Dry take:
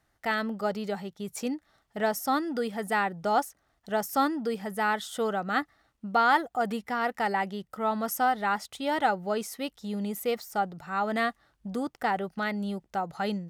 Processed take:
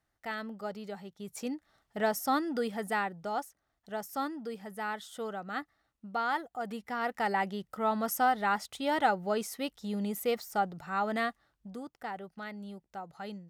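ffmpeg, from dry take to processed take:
ffmpeg -i in.wav -af "volume=5.5dB,afade=type=in:start_time=0.97:duration=1:silence=0.446684,afade=type=out:start_time=2.7:duration=0.61:silence=0.446684,afade=type=in:start_time=6.62:duration=0.8:silence=0.421697,afade=type=out:start_time=10.87:duration=0.96:silence=0.316228" out.wav

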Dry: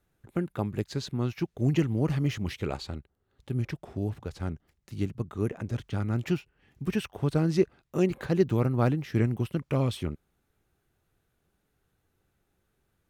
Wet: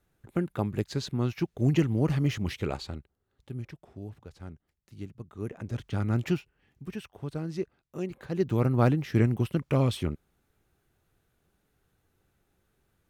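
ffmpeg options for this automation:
ffmpeg -i in.wav -af "volume=24dB,afade=type=out:start_time=2.59:duration=1.13:silence=0.281838,afade=type=in:start_time=5.3:duration=0.84:silence=0.251189,afade=type=out:start_time=6.14:duration=0.72:silence=0.281838,afade=type=in:start_time=8.26:duration=0.46:silence=0.281838" out.wav

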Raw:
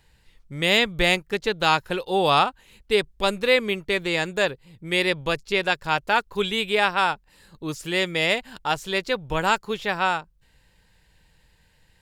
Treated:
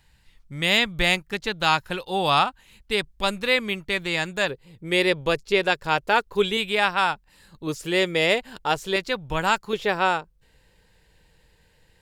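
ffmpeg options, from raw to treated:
ffmpeg -i in.wav -af "asetnsamples=nb_out_samples=441:pad=0,asendcmd='4.48 equalizer g 4.5;6.57 equalizer g -3.5;7.67 equalizer g 5.5;8.96 equalizer g -3.5;9.73 equalizer g 7',equalizer=frequency=440:width_type=o:width=0.83:gain=-6.5" out.wav

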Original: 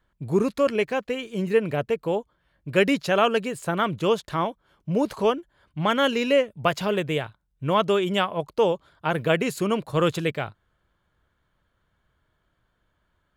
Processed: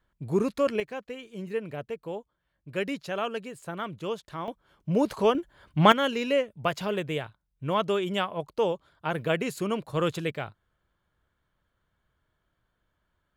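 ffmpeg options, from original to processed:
ffmpeg -i in.wav -af "asetnsamples=nb_out_samples=441:pad=0,asendcmd='0.8 volume volume -10.5dB;4.48 volume volume -1dB;5.35 volume volume 5.5dB;5.92 volume volume -5dB',volume=-3.5dB" out.wav

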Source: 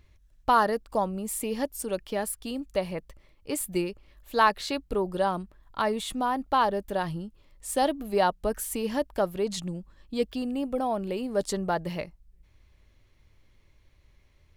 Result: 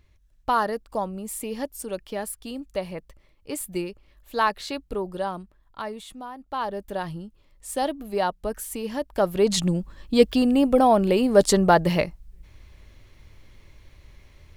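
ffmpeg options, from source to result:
ffmpeg -i in.wav -af "volume=22dB,afade=type=out:start_time=4.9:duration=1.48:silence=0.281838,afade=type=in:start_time=6.38:duration=0.5:silence=0.281838,afade=type=in:start_time=9.06:duration=0.57:silence=0.251189" out.wav

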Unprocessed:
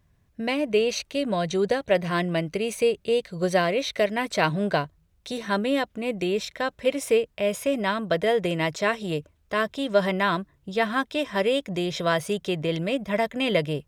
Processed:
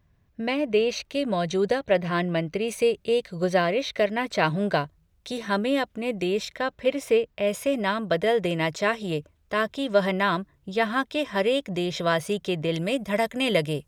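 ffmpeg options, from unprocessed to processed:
ffmpeg -i in.wav -af "asetnsamples=nb_out_samples=441:pad=0,asendcmd='1.1 equalizer g -2.5;1.79 equalizer g -10;2.68 equalizer g -1.5;3.44 equalizer g -8;4.46 equalizer g -1;6.58 equalizer g -8.5;7.47 equalizer g -1.5;12.74 equalizer g 8',equalizer=frequency=9800:width_type=o:width=1.3:gain=-8.5" out.wav

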